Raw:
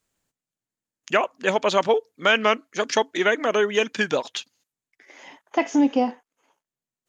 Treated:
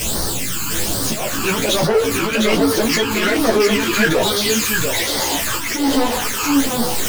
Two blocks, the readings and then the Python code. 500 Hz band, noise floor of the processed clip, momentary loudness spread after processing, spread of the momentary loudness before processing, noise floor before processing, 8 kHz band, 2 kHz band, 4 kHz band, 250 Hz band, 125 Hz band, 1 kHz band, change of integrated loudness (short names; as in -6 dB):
+4.5 dB, -22 dBFS, 5 LU, 7 LU, under -85 dBFS, +19.0 dB, +5.0 dB, +10.5 dB, +8.0 dB, +16.5 dB, +3.5 dB, +5.5 dB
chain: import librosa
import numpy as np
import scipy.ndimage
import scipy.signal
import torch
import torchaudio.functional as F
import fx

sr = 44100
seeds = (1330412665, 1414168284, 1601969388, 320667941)

p1 = x + 0.5 * 10.0 ** (-22.0 / 20.0) * np.sign(x)
p2 = fx.peak_eq(p1, sr, hz=220.0, db=-5.0, octaves=0.77)
p3 = fx.over_compress(p2, sr, threshold_db=-21.0, ratio=-1.0)
p4 = p2 + F.gain(torch.from_numpy(p3), -2.0).numpy()
p5 = fx.auto_swell(p4, sr, attack_ms=247.0)
p6 = fx.phaser_stages(p5, sr, stages=12, low_hz=590.0, high_hz=2600.0, hz=1.2, feedback_pct=25)
p7 = 10.0 ** (-19.0 / 20.0) * np.tanh(p6 / 10.0 ** (-19.0 / 20.0))
p8 = fx.doubler(p7, sr, ms=18.0, db=-5.5)
p9 = p8 + 10.0 ** (-3.5 / 20.0) * np.pad(p8, (int(708 * sr / 1000.0), 0))[:len(p8)]
p10 = fx.ensemble(p9, sr)
y = F.gain(torch.from_numpy(p10), 7.5).numpy()